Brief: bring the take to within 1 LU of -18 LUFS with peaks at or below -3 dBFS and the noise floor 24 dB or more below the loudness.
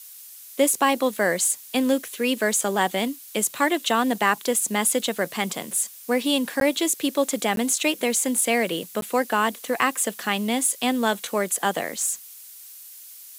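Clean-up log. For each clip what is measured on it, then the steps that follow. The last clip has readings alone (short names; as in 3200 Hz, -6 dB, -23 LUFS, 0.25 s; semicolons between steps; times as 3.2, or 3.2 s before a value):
dropouts 3; longest dropout 12 ms; noise floor -44 dBFS; noise floor target -47 dBFS; loudness -23.0 LUFS; peak -6.5 dBFS; loudness target -18.0 LUFS
-> interpolate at 6.6/7.56/9.01, 12 ms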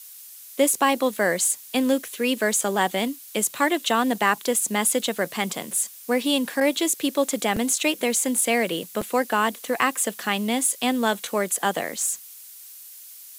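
dropouts 0; noise floor -44 dBFS; noise floor target -47 dBFS
-> noise print and reduce 6 dB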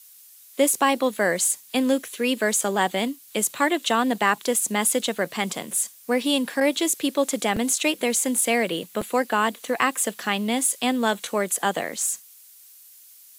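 noise floor -50 dBFS; loudness -23.0 LUFS; peak -7.0 dBFS; loudness target -18.0 LUFS
-> gain +5 dB; limiter -3 dBFS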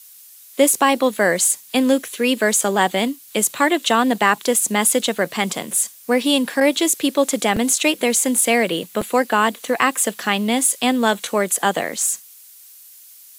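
loudness -18.0 LUFS; peak -3.0 dBFS; noise floor -45 dBFS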